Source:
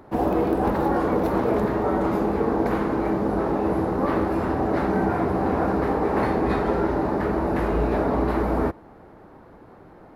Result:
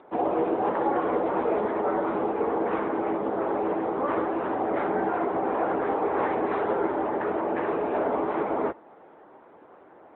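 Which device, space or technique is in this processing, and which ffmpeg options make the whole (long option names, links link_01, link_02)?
telephone: -af "highpass=380,lowpass=3500" -ar 8000 -c:a libopencore_amrnb -b:a 10200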